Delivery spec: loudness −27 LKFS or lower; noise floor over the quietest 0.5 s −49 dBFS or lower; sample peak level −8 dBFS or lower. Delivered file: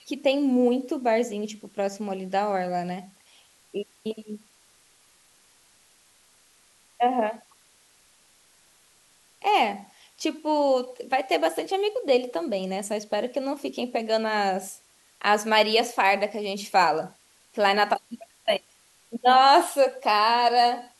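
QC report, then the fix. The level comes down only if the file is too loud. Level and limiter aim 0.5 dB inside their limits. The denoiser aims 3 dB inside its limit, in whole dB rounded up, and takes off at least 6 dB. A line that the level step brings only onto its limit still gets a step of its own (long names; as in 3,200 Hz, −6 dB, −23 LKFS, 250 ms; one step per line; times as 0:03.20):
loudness −24.0 LKFS: out of spec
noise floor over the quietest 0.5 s −60 dBFS: in spec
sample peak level −6.5 dBFS: out of spec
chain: level −3.5 dB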